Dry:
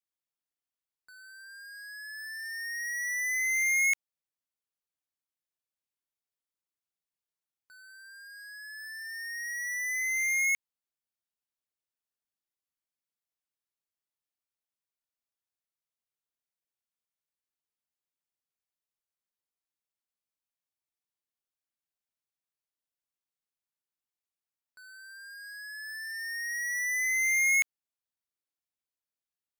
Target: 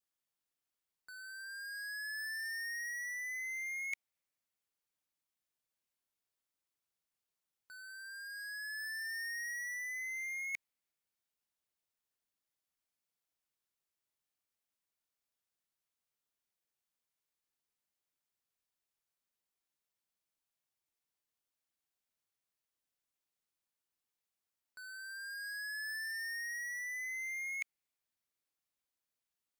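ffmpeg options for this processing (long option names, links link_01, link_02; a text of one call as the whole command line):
ffmpeg -i in.wav -af "adynamicequalizer=threshold=0.00891:dfrequency=2200:dqfactor=3.8:tfrequency=2200:tqfactor=3.8:attack=5:release=100:ratio=0.375:range=3.5:mode=boostabove:tftype=bell,areverse,acompressor=threshold=-42dB:ratio=16,areverse,volume=2dB" out.wav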